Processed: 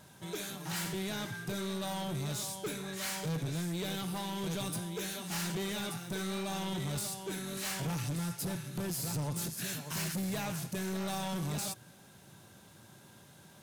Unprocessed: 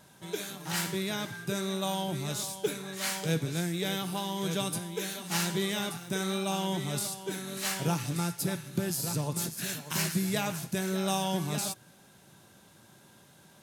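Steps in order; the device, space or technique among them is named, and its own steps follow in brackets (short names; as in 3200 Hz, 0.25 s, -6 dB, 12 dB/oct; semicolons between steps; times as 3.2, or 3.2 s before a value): open-reel tape (soft clip -33 dBFS, distortion -8 dB; bell 98 Hz +4.5 dB 1.14 oct; white noise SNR 40 dB)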